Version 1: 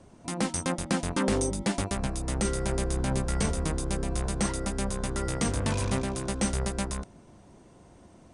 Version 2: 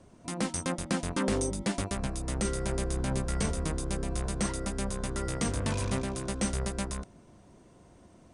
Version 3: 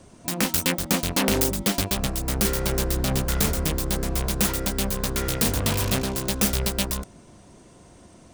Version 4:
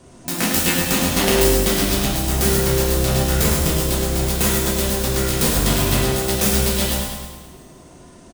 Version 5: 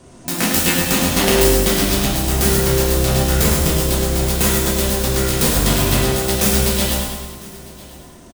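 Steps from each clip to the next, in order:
notch filter 830 Hz, Q 13; level −2.5 dB
phase distortion by the signal itself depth 0.4 ms; high-shelf EQ 2,900 Hz +8 dB; level +6 dB
on a send: repeating echo 105 ms, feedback 55%, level −6.5 dB; on the sum: coupled-rooms reverb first 0.84 s, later 2.8 s, from −27 dB, DRR −3 dB
single-tap delay 1,002 ms −21.5 dB; level +2 dB

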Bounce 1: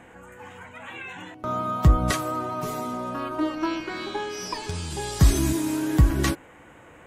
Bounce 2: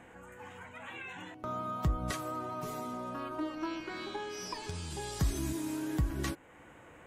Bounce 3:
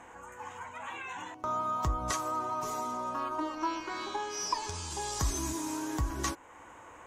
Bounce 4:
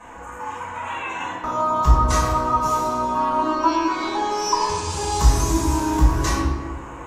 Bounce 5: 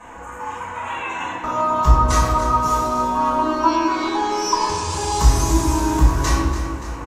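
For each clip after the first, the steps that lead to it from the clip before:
downward compressor 1.5 to 1, threshold −36 dBFS, peak gain reduction 9 dB; level −5.5 dB
graphic EQ with 15 bands 160 Hz −9 dB, 1,000 Hz +11 dB, 6,300 Hz +11 dB
convolution reverb RT60 1.7 s, pre-delay 4 ms, DRR −10 dB
repeating echo 288 ms, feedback 56%, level −12 dB; level +1.5 dB

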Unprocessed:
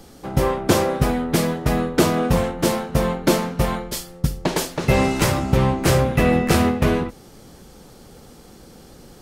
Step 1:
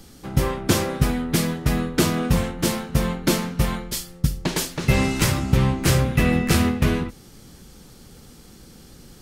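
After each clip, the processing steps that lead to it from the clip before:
parametric band 640 Hz −9 dB 1.9 octaves
level +1 dB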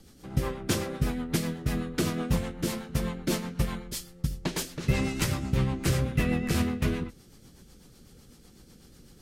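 rotating-speaker cabinet horn 8 Hz
level −6 dB

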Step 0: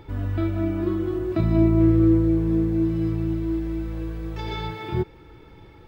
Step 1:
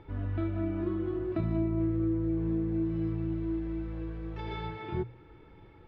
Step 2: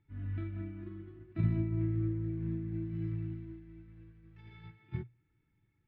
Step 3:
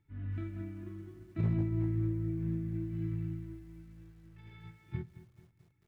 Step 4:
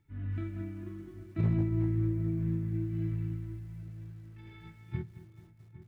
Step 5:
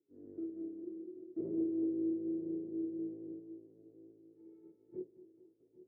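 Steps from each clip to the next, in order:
low-pass filter 3,000 Hz 12 dB per octave; mains-hum notches 60/120 Hz; downward compressor, threshold −19 dBFS, peak gain reduction 6 dB; level −6.5 dB
octave-band graphic EQ 125/250/500/1,000/2,000 Hz +10/+5/−11/−5/+8 dB; expander for the loud parts 2.5 to 1, over −36 dBFS; level −2.5 dB
hard clipping −24.5 dBFS, distortion −21 dB; on a send at −18.5 dB: convolution reverb RT60 1.0 s, pre-delay 12 ms; on the sum: feedback echo at a low word length 219 ms, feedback 55%, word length 10 bits, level −15 dB
feedback echo with a low-pass in the loop 808 ms, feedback 53%, low-pass 2,000 Hz, level −15.5 dB; level +2.5 dB
sub-octave generator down 1 octave, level −4 dB; flat-topped band-pass 390 Hz, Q 2.4; level +2.5 dB

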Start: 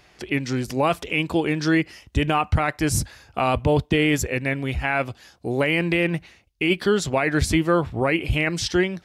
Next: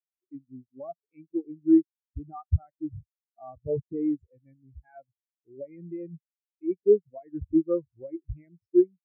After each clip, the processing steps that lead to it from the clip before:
parametric band 3,500 Hz −6.5 dB 0.94 octaves
every bin expanded away from the loudest bin 4 to 1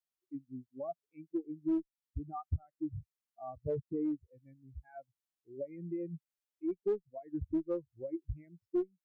in parallel at −7.5 dB: asymmetric clip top −23 dBFS, bottom −14 dBFS
on the sum: downward compressor 3 to 1, threshold −30 dBFS, peak gain reduction 13.5 dB
level −3.5 dB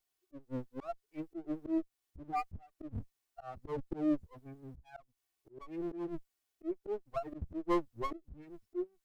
lower of the sound and its delayed copy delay 2.7 ms
volume swells 265 ms
level +9.5 dB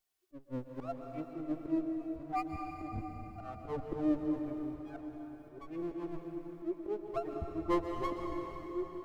dense smooth reverb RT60 4.5 s, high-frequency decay 0.8×, pre-delay 110 ms, DRR 2.5 dB

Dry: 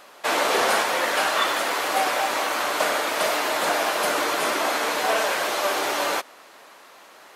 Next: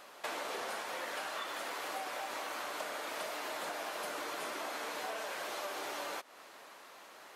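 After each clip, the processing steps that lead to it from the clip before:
downward compressor 6 to 1, threshold −32 dBFS, peak gain reduction 14 dB
level −6 dB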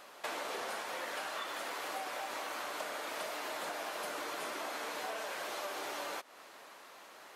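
no processing that can be heard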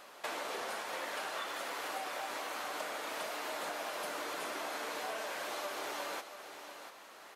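single-tap delay 690 ms −10 dB

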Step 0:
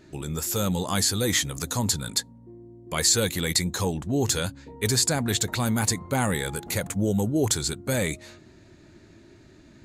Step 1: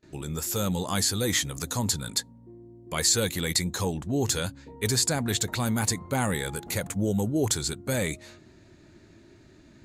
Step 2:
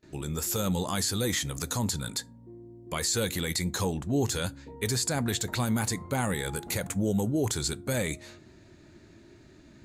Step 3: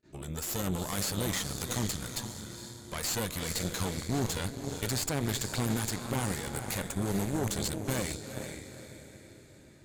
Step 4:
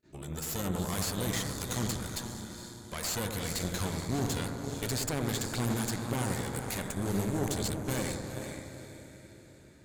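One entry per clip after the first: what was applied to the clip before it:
noise gate with hold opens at −45 dBFS; level −2 dB
brickwall limiter −18.5 dBFS, peak gain reduction 8 dB; convolution reverb RT60 0.35 s, pre-delay 7 ms, DRR 19.5 dB
feedback delay with all-pass diffusion 456 ms, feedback 46%, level −7 dB; harmonic generator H 4 −10 dB, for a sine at −16.5 dBFS; level that may rise only so fast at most 490 dB per second; level −5.5 dB
bucket-brigade delay 92 ms, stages 1,024, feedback 69%, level −5.5 dB; level −1.5 dB

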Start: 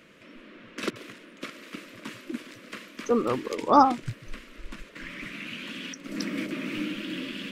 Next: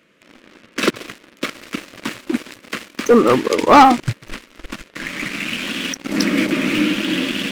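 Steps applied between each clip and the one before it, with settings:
low-shelf EQ 68 Hz −9.5 dB
leveller curve on the samples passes 3
level +3.5 dB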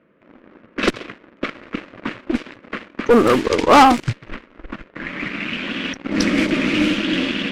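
one-sided soft clipper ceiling −13.5 dBFS
low-pass that shuts in the quiet parts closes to 1,200 Hz, open at −12 dBFS
level +1.5 dB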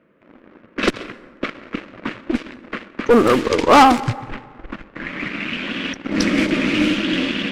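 dense smooth reverb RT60 1.7 s, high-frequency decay 0.45×, pre-delay 105 ms, DRR 18.5 dB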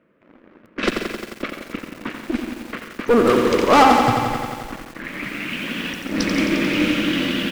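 on a send: repeating echo 139 ms, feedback 39%, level −12 dB
on the sum: feedback echo at a low word length 88 ms, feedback 80%, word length 6 bits, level −6 dB
level −3 dB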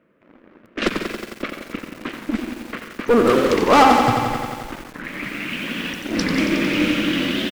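wow of a warped record 45 rpm, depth 160 cents

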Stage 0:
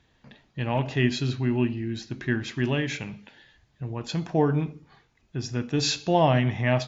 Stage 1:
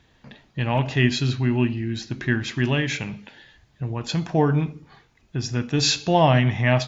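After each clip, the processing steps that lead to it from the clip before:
dynamic equaliser 400 Hz, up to −4 dB, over −36 dBFS, Q 0.71
level +5.5 dB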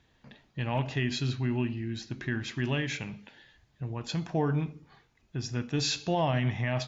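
brickwall limiter −11.5 dBFS, peak gain reduction 5.5 dB
level −7.5 dB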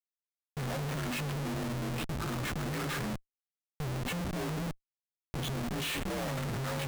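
partials spread apart or drawn together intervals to 84%
comparator with hysteresis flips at −43 dBFS
level −1 dB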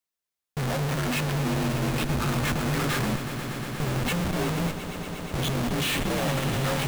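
echo that builds up and dies away 119 ms, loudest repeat 5, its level −14 dB
level +7.5 dB

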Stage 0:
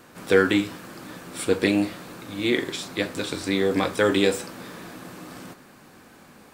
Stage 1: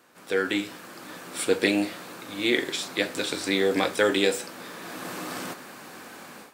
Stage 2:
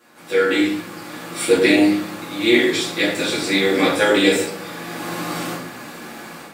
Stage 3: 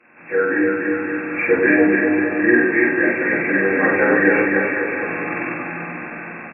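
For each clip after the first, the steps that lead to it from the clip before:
high-pass filter 410 Hz 6 dB per octave; dynamic equaliser 1,100 Hz, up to −5 dB, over −45 dBFS, Q 2.9; automatic gain control gain up to 16 dB; level −7 dB
rectangular room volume 100 cubic metres, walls mixed, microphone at 2.3 metres; level −1.5 dB
hearing-aid frequency compression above 1,500 Hz 4 to 1; on a send: bouncing-ball delay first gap 290 ms, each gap 0.85×, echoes 5; on the sum: level −1.5 dB

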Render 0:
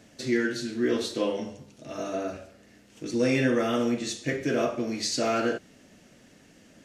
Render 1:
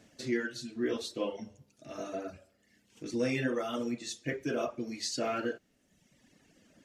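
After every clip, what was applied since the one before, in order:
reverb reduction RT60 1.2 s
level −5.5 dB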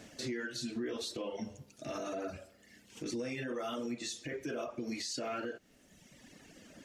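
downward compressor 6 to 1, threshold −40 dBFS, peak gain reduction 14 dB
parametric band 130 Hz −2.5 dB 2.3 octaves
brickwall limiter −38.5 dBFS, peak gain reduction 8.5 dB
level +8.5 dB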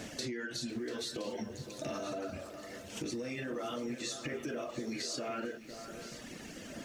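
downward compressor 5 to 1, threshold −46 dBFS, peak gain reduction 11.5 dB
delay that swaps between a low-pass and a high-pass 509 ms, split 2,000 Hz, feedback 64%, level −10 dB
feedback echo at a low word length 691 ms, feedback 35%, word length 11 bits, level −14 dB
level +9 dB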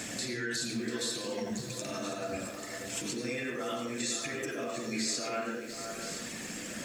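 brickwall limiter −33 dBFS, peak gain reduction 7.5 dB
convolution reverb RT60 0.45 s, pre-delay 79 ms, DRR 3 dB
level +8 dB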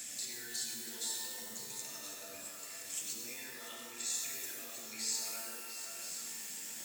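high-pass filter 62 Hz
first-order pre-emphasis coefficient 0.9
reverb with rising layers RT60 1.8 s, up +12 semitones, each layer −2 dB, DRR 3 dB
level −2 dB

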